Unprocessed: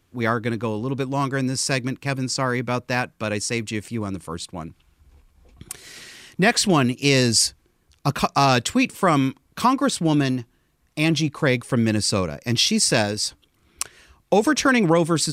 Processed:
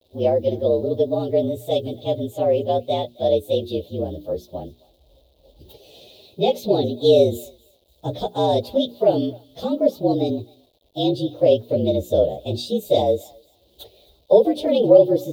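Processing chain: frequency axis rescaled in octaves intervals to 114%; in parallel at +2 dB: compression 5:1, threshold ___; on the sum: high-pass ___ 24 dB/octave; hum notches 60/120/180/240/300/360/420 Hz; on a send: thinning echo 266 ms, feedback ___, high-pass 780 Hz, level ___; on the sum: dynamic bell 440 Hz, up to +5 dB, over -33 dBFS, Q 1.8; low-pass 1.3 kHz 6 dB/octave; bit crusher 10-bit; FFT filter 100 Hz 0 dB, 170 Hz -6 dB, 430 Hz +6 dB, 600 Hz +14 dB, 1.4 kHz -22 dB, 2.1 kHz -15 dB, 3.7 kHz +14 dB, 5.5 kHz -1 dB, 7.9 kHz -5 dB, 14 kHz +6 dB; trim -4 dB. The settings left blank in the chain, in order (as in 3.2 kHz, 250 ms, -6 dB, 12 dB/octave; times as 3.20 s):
-31 dBFS, 43 Hz, 21%, -21.5 dB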